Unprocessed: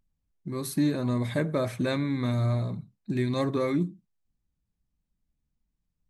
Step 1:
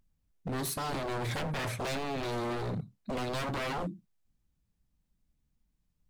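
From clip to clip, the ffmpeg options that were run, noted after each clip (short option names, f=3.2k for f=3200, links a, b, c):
-filter_complex "[0:a]asplit=2[a][b];[b]alimiter=level_in=1dB:limit=-24dB:level=0:latency=1:release=31,volume=-1dB,volume=2dB[c];[a][c]amix=inputs=2:normalize=0,aeval=exprs='0.0562*(abs(mod(val(0)/0.0562+3,4)-2)-1)':c=same,volume=-4dB"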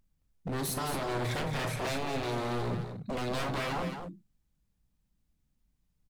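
-af "aecho=1:1:40.82|218.7:0.316|0.447"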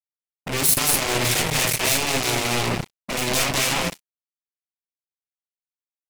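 -af "acrusher=bits=4:mix=0:aa=0.5,aexciter=amount=2.3:drive=5.3:freq=2.1k,volume=8dB"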